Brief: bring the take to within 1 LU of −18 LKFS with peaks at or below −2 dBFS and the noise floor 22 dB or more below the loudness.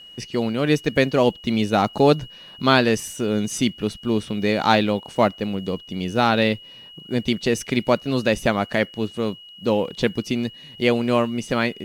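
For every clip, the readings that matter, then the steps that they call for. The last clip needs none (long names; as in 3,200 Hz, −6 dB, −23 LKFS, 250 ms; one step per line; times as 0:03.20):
interfering tone 2,900 Hz; level of the tone −41 dBFS; integrated loudness −22.0 LKFS; sample peak −2.5 dBFS; target loudness −18.0 LKFS
→ notch filter 2,900 Hz, Q 30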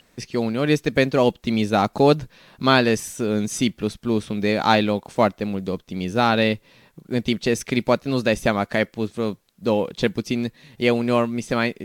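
interfering tone none found; integrated loudness −22.0 LKFS; sample peak −3.0 dBFS; target loudness −18.0 LKFS
→ level +4 dB
brickwall limiter −2 dBFS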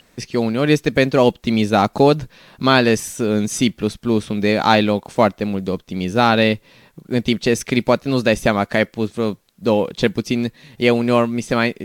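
integrated loudness −18.0 LKFS; sample peak −2.0 dBFS; background noise floor −56 dBFS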